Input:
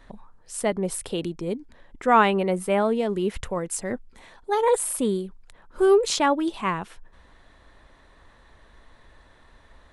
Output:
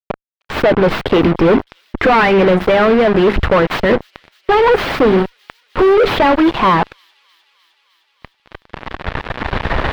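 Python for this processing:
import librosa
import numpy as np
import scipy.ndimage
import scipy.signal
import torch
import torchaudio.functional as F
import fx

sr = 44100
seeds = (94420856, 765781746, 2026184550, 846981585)

p1 = fx.tracing_dist(x, sr, depth_ms=0.38)
p2 = fx.recorder_agc(p1, sr, target_db=-15.0, rise_db_per_s=5.7, max_gain_db=30)
p3 = fx.hum_notches(p2, sr, base_hz=50, count=8)
p4 = fx.hpss(p3, sr, part='harmonic', gain_db=-10)
p5 = fx.fuzz(p4, sr, gain_db=45.0, gate_db=-40.0)
p6 = fx.air_absorb(p5, sr, metres=380.0)
p7 = p6 + fx.echo_wet_highpass(p6, sr, ms=306, feedback_pct=77, hz=4300.0, wet_db=-21.5, dry=0)
y = F.gain(torch.from_numpy(p7), 6.5).numpy()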